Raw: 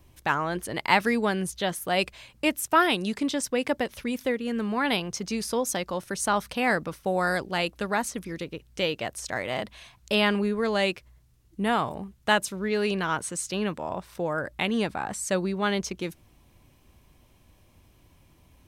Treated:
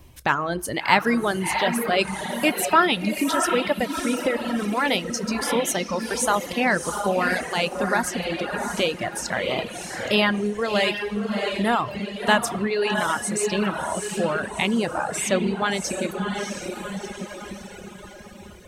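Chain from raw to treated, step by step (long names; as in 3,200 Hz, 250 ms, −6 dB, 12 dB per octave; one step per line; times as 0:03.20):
feedback delay with all-pass diffusion 692 ms, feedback 50%, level −4 dB
convolution reverb, pre-delay 3 ms, DRR 11.5 dB
in parallel at +0.5 dB: downward compressor, threshold −32 dBFS, peak gain reduction 16.5 dB
on the sum: reverb reduction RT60 1.7 s
level +1.5 dB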